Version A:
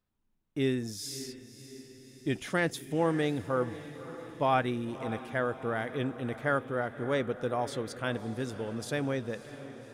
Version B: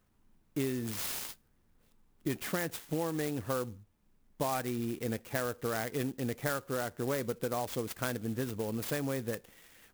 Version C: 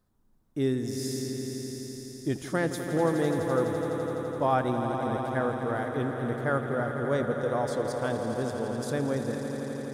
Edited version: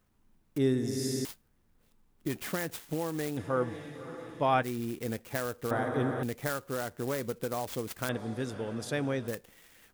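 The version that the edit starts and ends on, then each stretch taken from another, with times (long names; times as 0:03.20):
B
0:00.58–0:01.25: punch in from C
0:03.37–0:04.63: punch in from A
0:05.71–0:06.23: punch in from C
0:08.09–0:09.28: punch in from A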